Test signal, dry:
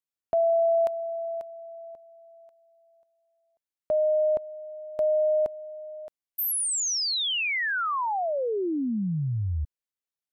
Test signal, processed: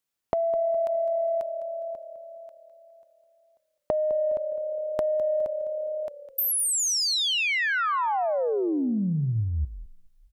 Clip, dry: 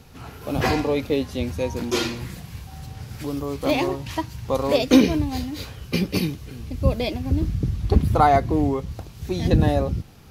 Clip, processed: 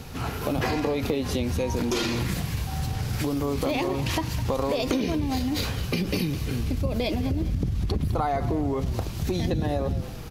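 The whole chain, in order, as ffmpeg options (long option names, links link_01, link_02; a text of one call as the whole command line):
ffmpeg -i in.wav -filter_complex "[0:a]acompressor=threshold=-33dB:ratio=10:attack=9.3:release=65:knee=1:detection=peak,asplit=2[link_01][link_02];[link_02]asplit=4[link_03][link_04][link_05][link_06];[link_03]adelay=206,afreqshift=-36,volume=-13.5dB[link_07];[link_04]adelay=412,afreqshift=-72,volume=-21.9dB[link_08];[link_05]adelay=618,afreqshift=-108,volume=-30.3dB[link_09];[link_06]adelay=824,afreqshift=-144,volume=-38.7dB[link_10];[link_07][link_08][link_09][link_10]amix=inputs=4:normalize=0[link_11];[link_01][link_11]amix=inputs=2:normalize=0,volume=8.5dB" out.wav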